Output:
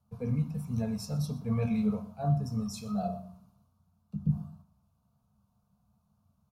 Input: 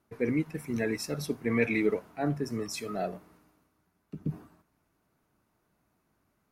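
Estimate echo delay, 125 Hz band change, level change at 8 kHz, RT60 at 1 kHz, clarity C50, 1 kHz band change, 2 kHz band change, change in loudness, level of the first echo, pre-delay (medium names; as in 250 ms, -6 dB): 120 ms, +7.0 dB, -5.5 dB, 0.50 s, 12.0 dB, -0.5 dB, -18.0 dB, -1.0 dB, -20.5 dB, 3 ms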